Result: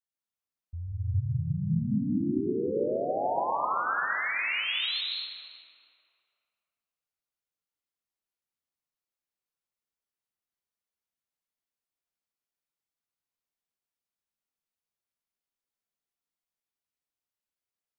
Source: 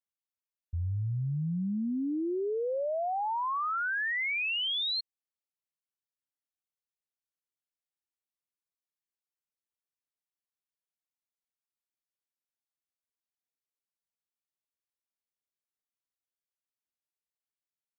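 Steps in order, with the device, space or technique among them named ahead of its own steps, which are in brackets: stairwell (reverb RT60 2.6 s, pre-delay 0.119 s, DRR -5 dB); gain -4.5 dB

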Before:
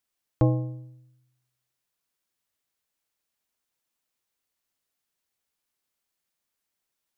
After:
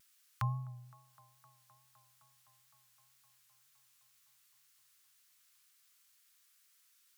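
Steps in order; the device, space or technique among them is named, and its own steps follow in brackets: Chebyshev band-stop 130–1200 Hz, order 3; HPF 160 Hz 12 dB/oct; tone controls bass -12 dB, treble +1 dB; band-limited delay 0.257 s, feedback 79%, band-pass 450 Hz, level -16 dB; noise-reduction cassette on a plain deck (mismatched tape noise reduction encoder only; wow and flutter; white noise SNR 38 dB); gain +5.5 dB

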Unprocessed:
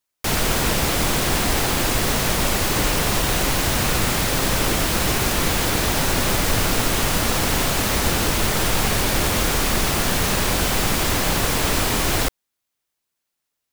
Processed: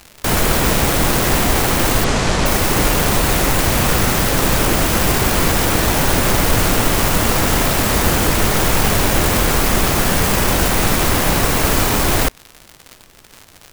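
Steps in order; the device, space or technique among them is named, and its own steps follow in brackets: record under a worn stylus (tracing distortion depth 0.3 ms; crackle 130/s -29 dBFS; pink noise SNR 34 dB); 2.04–2.46 LPF 7800 Hz 24 dB/oct; gain +5.5 dB

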